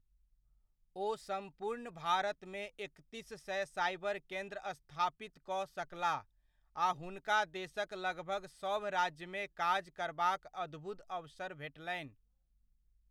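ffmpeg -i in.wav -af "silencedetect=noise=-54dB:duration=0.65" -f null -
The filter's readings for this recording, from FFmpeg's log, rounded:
silence_start: 0.00
silence_end: 0.96 | silence_duration: 0.96
silence_start: 12.10
silence_end: 13.11 | silence_duration: 1.01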